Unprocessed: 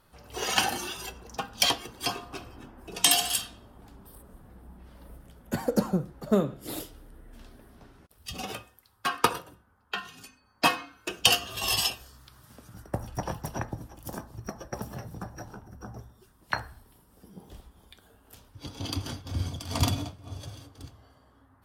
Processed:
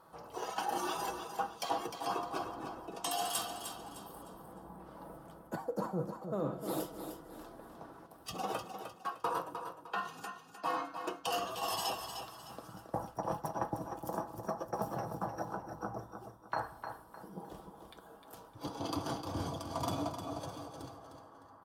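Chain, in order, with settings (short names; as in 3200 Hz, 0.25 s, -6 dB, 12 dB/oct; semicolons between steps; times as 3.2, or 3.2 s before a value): HPF 470 Hz 6 dB/oct; resonant high shelf 1500 Hz -11 dB, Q 1.5; comb 6.1 ms, depth 38%; reverse; compressor 16:1, threshold -39 dBFS, peak gain reduction 23.5 dB; reverse; feedback echo 0.305 s, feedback 34%, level -8 dB; gain +6.5 dB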